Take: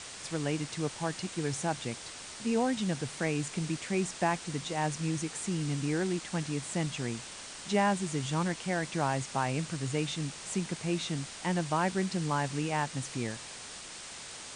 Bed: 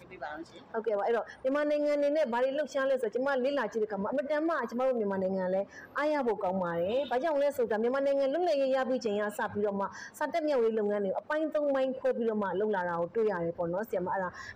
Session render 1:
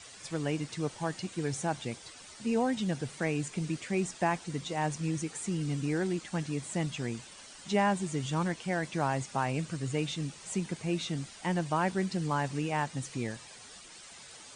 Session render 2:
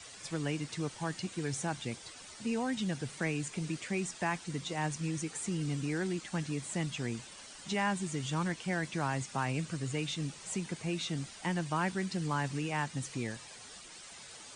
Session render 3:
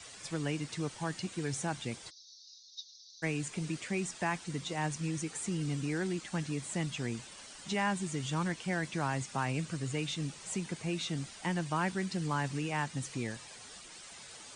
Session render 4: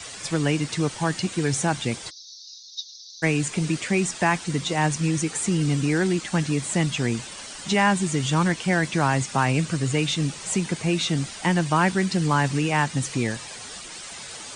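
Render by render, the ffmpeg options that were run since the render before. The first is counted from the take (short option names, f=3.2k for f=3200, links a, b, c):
-af "afftdn=nr=10:nf=-45"
-filter_complex "[0:a]acrossover=split=430|900[a][b][c];[a]alimiter=level_in=4.5dB:limit=-24dB:level=0:latency=1:release=367,volume=-4.5dB[d];[b]acompressor=threshold=-47dB:ratio=6[e];[d][e][c]amix=inputs=3:normalize=0"
-filter_complex "[0:a]asplit=3[a][b][c];[a]afade=t=out:st=2.09:d=0.02[d];[b]asuperpass=centerf=4800:order=12:qfactor=1.9,afade=t=in:st=2.09:d=0.02,afade=t=out:st=3.22:d=0.02[e];[c]afade=t=in:st=3.22:d=0.02[f];[d][e][f]amix=inputs=3:normalize=0"
-af "volume=12dB"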